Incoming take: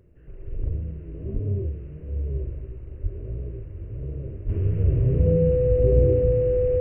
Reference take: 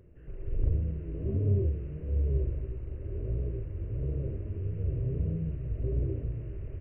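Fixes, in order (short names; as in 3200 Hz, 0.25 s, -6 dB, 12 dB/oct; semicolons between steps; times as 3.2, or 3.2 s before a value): notch 500 Hz, Q 30; 1.33–1.45 HPF 140 Hz 24 dB/oct; 3.02–3.14 HPF 140 Hz 24 dB/oct; 4.45–4.57 HPF 140 Hz 24 dB/oct; gain 0 dB, from 4.49 s -10.5 dB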